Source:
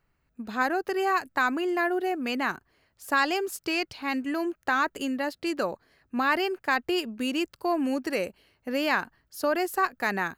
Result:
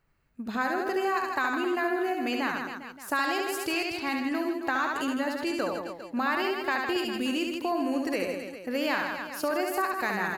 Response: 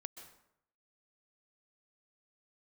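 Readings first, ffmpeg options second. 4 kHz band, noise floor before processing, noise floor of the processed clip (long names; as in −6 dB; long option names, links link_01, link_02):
−1.0 dB, −73 dBFS, −45 dBFS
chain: -af "aecho=1:1:70|157.5|266.9|403.6|574.5:0.631|0.398|0.251|0.158|0.1,acompressor=threshold=-27dB:ratio=2"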